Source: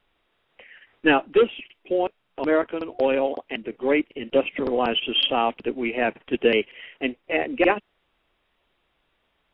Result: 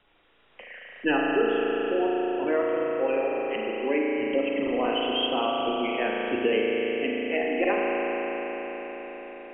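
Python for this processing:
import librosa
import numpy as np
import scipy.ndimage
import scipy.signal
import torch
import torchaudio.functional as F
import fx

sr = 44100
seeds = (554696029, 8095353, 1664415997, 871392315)

y = fx.spec_gate(x, sr, threshold_db=-25, keep='strong')
y = fx.rev_spring(y, sr, rt60_s=4.0, pass_ms=(36,), chirp_ms=75, drr_db=-3.0)
y = fx.band_squash(y, sr, depth_pct=40)
y = y * librosa.db_to_amplitude(-7.0)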